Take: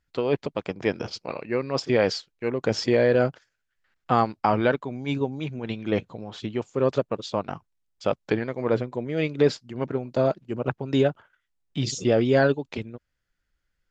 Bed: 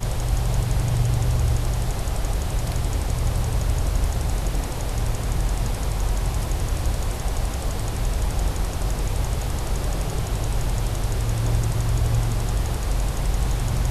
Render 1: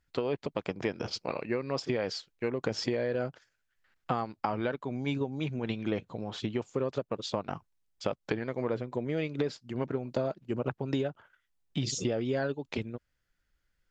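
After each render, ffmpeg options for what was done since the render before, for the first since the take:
-af "acompressor=threshold=-27dB:ratio=10"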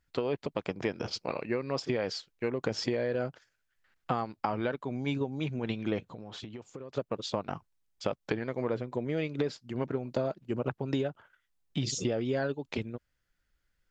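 -filter_complex "[0:a]asettb=1/sr,asplit=3[a][b][c];[a]atrim=end=6.134[d];[b]atrim=start=6.13:end=6.95,asetpts=PTS-STARTPTS,afade=t=in:d=0.004:c=qsin,afade=t=out:st=0.816:d=0.004:c=qsin,acompressor=threshold=-39dB:ratio=6:attack=3.2:release=140:knee=1:detection=peak[e];[c]atrim=start=6.946[f];[d][e]acrossfade=d=0.004:c1=hsin:c2=qsin[g];[g][f]acrossfade=d=0.004:c1=qsin:c2=hsin"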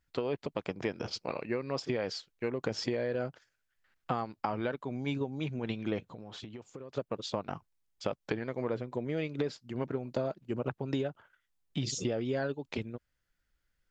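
-af "volume=-2dB"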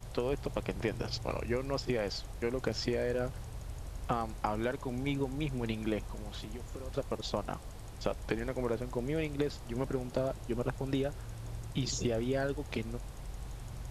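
-filter_complex "[1:a]volume=-20.5dB[a];[0:a][a]amix=inputs=2:normalize=0"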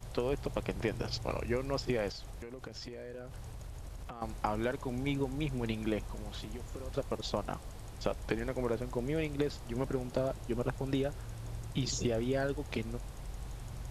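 -filter_complex "[0:a]asettb=1/sr,asplit=3[a][b][c];[a]atrim=end=2.104[d];[b]atrim=start=2.1:end=4.22,asetpts=PTS-STARTPTS,afade=t=in:d=0.004:c=qsin,afade=t=out:st=2.116:d=0.004:c=qsin,acompressor=threshold=-40dB:ratio=10:attack=3.2:release=140:knee=1:detection=peak[e];[c]atrim=start=4.216[f];[d][e]acrossfade=d=0.004:c1=hsin:c2=qsin[g];[g][f]acrossfade=d=0.004:c1=qsin:c2=hsin"

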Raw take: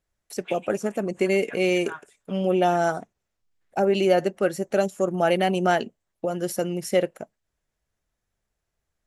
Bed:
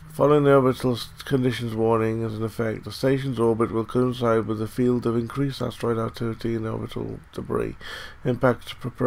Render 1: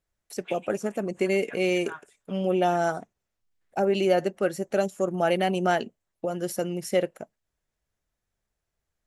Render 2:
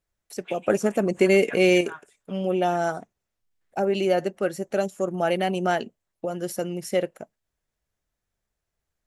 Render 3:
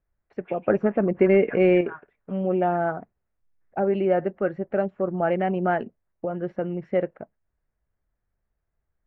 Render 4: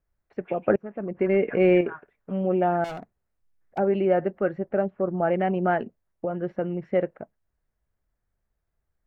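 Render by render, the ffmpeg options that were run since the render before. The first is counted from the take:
-af "volume=-2.5dB"
-filter_complex "[0:a]asettb=1/sr,asplit=3[a][b][c];[a]atrim=end=0.674[d];[b]atrim=start=0.67:end=1.81,asetpts=PTS-STARTPTS,afade=t=in:d=0.004:c=qsin,afade=t=out:st=1.136:d=0.004:c=qsin,acontrast=69[e];[c]atrim=start=1.806[f];[d][e]acrossfade=d=0.004:c1=hsin:c2=qsin[g];[g][f]acrossfade=d=0.004:c1=qsin:c2=hsin"
-af "lowpass=f=2k:w=0.5412,lowpass=f=2k:w=1.3066,lowshelf=f=110:g=7.5"
-filter_complex "[0:a]asettb=1/sr,asplit=3[a][b][c];[a]atrim=end=2.844[d];[b]atrim=start=2.84:end=3.78,asetpts=PTS-STARTPTS,afade=t=in:d=0.004:c=qsin,afade=t=out:st=0.936:d=0.004:c=qsin,volume=32dB,asoftclip=hard,volume=-32dB[e];[c]atrim=start=3.776[f];[d][e]acrossfade=d=0.004:c1=hsin:c2=qsin[g];[g][f]acrossfade=d=0.004:c1=qsin:c2=hsin,asettb=1/sr,asplit=3[h][i][j];[h]atrim=end=4.694[k];[i]atrim=start=4.69:end=5.34,asetpts=PTS-STARTPTS,afade=t=in:d=0.004:c=qsin,afade=t=out:st=0.646:d=0.004:c=qsin,aemphasis=mode=reproduction:type=75kf[l];[j]atrim=start=5.336[m];[k][l]acrossfade=d=0.004:c1=hsin:c2=qsin[n];[n][m]acrossfade=d=0.004:c1=qsin:c2=hsin,asplit=2[o][p];[o]atrim=end=0.76,asetpts=PTS-STARTPTS,afade=t=out:st=0.756:d=0.004:c=hsin:silence=0.0668344[q];[p]atrim=start=0.76,asetpts=PTS-STARTPTS,afade=t=in:d=0.96:silence=0.0668344[r];[q][r]concat=n=2:v=0:a=1"

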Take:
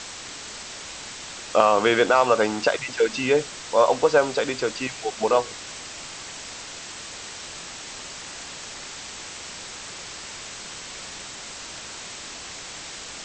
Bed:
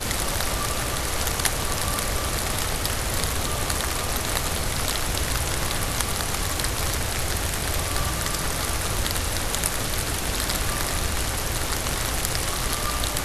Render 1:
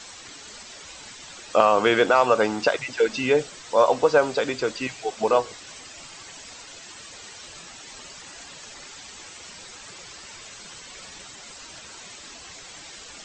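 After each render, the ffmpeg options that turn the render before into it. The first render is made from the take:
-af "afftdn=nr=10:nf=-38"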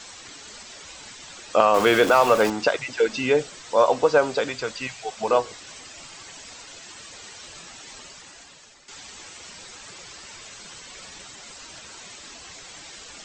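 -filter_complex "[0:a]asettb=1/sr,asplit=3[a][b][c];[a]atrim=end=1.744[d];[b]atrim=start=1.74:end=2.5,asetpts=PTS-STARTPTS,afade=t=in:d=0.004:c=qsin,afade=t=out:st=0.756:d=0.004:c=qsin,aeval=exprs='val(0)+0.5*0.0562*sgn(val(0))':c=same[e];[c]atrim=start=2.496[f];[d][e]acrossfade=d=0.004:c1=hsin:c2=qsin[g];[g][f]acrossfade=d=0.004:c1=qsin:c2=hsin,asettb=1/sr,asplit=3[h][i][j];[h]atrim=end=4.484[k];[i]atrim=start=4.48:end=5.28,asetpts=PTS-STARTPTS,afade=t=in:d=0.004:c=qsin,afade=t=out:st=0.796:d=0.004:c=qsin,equalizer=f=330:t=o:w=1:g=-9.5[l];[j]atrim=start=5.276[m];[k][l]acrossfade=d=0.004:c1=hsin:c2=qsin[n];[n][m]acrossfade=d=0.004:c1=qsin:c2=hsin,asplit=2[o][p];[o]atrim=end=8.88,asetpts=PTS-STARTPTS,afade=t=out:st=7.91:d=0.97:silence=0.211349[q];[p]atrim=start=8.88,asetpts=PTS-STARTPTS,afade=t=in:d=0.004:c=hsin:silence=0.211349[r];[q][r]concat=n=2:v=0:a=1"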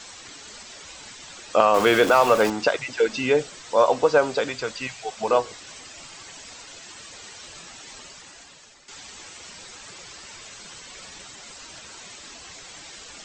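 -af anull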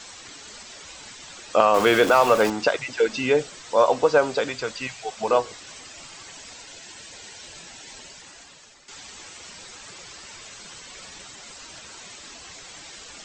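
-filter_complex "[0:a]asettb=1/sr,asplit=3[a][b][c];[a]atrim=end=6.524[d];[b]atrim=start=6.52:end=8.23,asetpts=PTS-STARTPTS,afade=t=in:d=0.004:c=qsin,afade=t=out:st=1.706:d=0.004:c=qsin,bandreject=f=1.2k:w=5.8[e];[c]atrim=start=8.226[f];[d][e]acrossfade=d=0.004:c1=hsin:c2=qsin[g];[g][f]acrossfade=d=0.004:c1=qsin:c2=hsin"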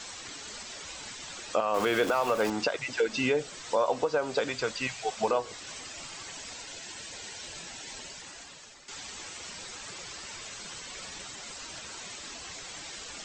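-af "acompressor=threshold=-20dB:ratio=2.5,alimiter=limit=-15.5dB:level=0:latency=1:release=377"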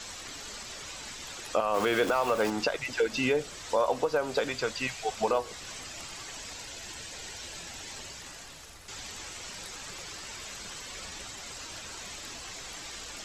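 -filter_complex "[1:a]volume=-27.5dB[a];[0:a][a]amix=inputs=2:normalize=0"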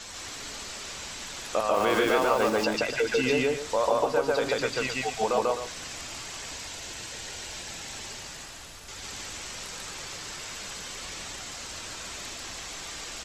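-af "aecho=1:1:142.9|259.5:1|0.316"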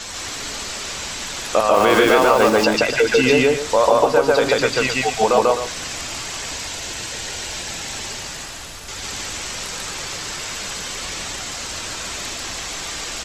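-af "volume=10dB,alimiter=limit=-2dB:level=0:latency=1"

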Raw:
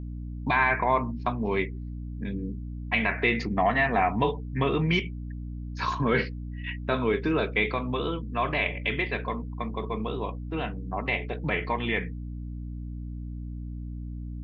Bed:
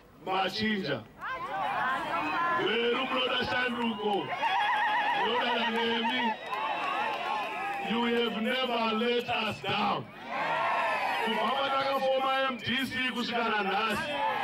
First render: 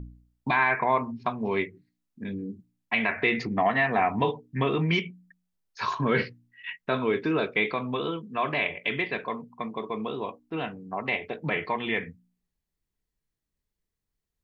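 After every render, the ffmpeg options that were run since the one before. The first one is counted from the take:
-af "bandreject=f=60:t=h:w=4,bandreject=f=120:t=h:w=4,bandreject=f=180:t=h:w=4,bandreject=f=240:t=h:w=4,bandreject=f=300:t=h:w=4"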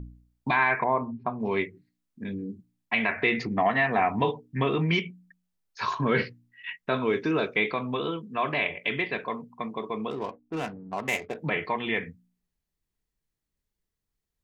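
-filter_complex "[0:a]asettb=1/sr,asplit=3[a][b][c];[a]atrim=end=0.844[d];[b]atrim=start=0.84:end=1.4,asetpts=PTS-STARTPTS,afade=t=in:d=0.004:c=qsin,afade=t=out:st=0.556:d=0.004:c=qsin,lowpass=1.1k[e];[c]atrim=start=1.396[f];[d][e]acrossfade=d=0.004:c1=hsin:c2=qsin[g];[g][f]acrossfade=d=0.004:c1=qsin:c2=hsin,asettb=1/sr,asplit=3[h][i][j];[h]atrim=end=7.064[k];[i]atrim=start=7.06:end=7.56,asetpts=PTS-STARTPTS,afade=t=in:d=0.004:c=qsin,afade=t=out:st=0.496:d=0.004:c=qsin,equalizer=f=6k:t=o:w=0.29:g=11.5[l];[j]atrim=start=7.556[m];[k][l]acrossfade=d=0.004:c1=hsin:c2=qsin[n];[n][m]acrossfade=d=0.004:c1=qsin:c2=hsin,asettb=1/sr,asplit=3[o][p][q];[o]atrim=end=10.104[r];[p]atrim=start=10.1:end=11.36,asetpts=PTS-STARTPTS,afade=t=in:d=0.004:c=qsin,afade=t=out:st=1.256:d=0.004:c=qsin,adynamicsmooth=sensitivity=7:basefreq=730[s];[q]atrim=start=11.356[t];[r][s]acrossfade=d=0.004:c1=hsin:c2=qsin[u];[u][t]acrossfade=d=0.004:c1=qsin:c2=hsin"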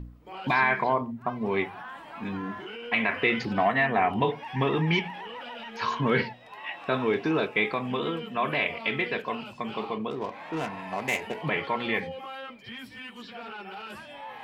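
-filter_complex "[1:a]volume=-11.5dB[a];[0:a][a]amix=inputs=2:normalize=0"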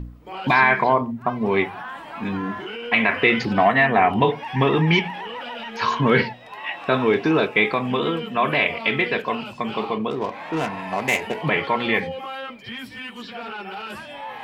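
-af "volume=7dB"

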